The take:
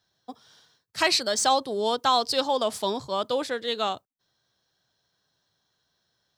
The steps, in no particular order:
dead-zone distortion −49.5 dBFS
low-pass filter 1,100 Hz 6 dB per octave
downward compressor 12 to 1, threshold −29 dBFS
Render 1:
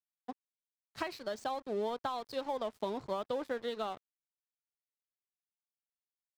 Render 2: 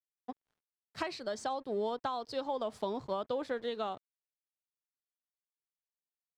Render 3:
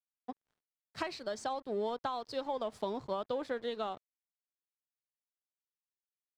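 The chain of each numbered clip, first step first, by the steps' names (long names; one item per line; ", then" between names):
downward compressor, then low-pass filter, then dead-zone distortion
dead-zone distortion, then downward compressor, then low-pass filter
downward compressor, then dead-zone distortion, then low-pass filter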